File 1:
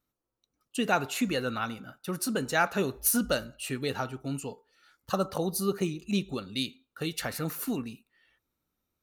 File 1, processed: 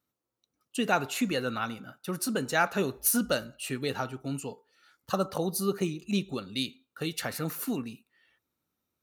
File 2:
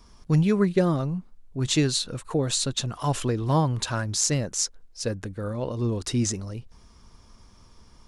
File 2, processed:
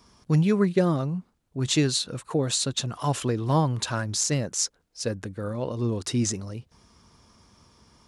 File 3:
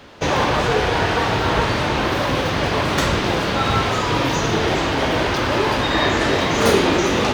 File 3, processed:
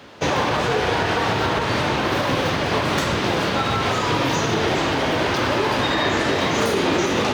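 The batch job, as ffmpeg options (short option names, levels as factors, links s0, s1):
-af "alimiter=limit=0.299:level=0:latency=1:release=89,highpass=85"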